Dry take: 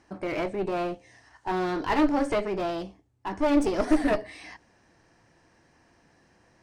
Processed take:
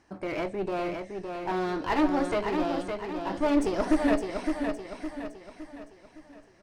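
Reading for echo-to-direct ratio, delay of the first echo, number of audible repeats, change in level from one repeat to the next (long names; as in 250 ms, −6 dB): −4.5 dB, 562 ms, 5, −7.0 dB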